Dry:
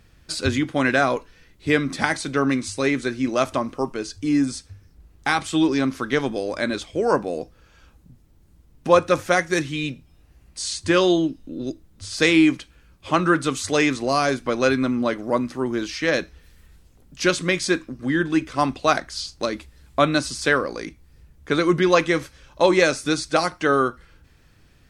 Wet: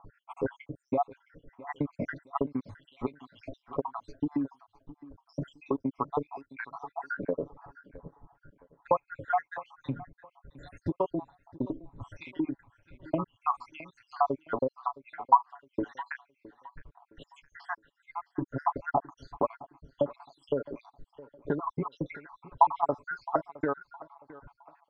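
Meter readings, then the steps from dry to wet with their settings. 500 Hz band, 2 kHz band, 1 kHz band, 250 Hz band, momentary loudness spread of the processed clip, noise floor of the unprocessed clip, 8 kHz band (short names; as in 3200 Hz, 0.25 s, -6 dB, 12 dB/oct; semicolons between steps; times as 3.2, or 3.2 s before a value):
-13.0 dB, -19.0 dB, -5.0 dB, -14.0 dB, 21 LU, -55 dBFS, under -40 dB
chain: random spectral dropouts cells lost 81%; comb 7.1 ms, depth 66%; compressor 12:1, threshold -33 dBFS, peak gain reduction 23 dB; synth low-pass 950 Hz, resonance Q 4.9; on a send: feedback echo 0.664 s, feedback 32%, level -19.5 dB; on the sum: gain +4.5 dB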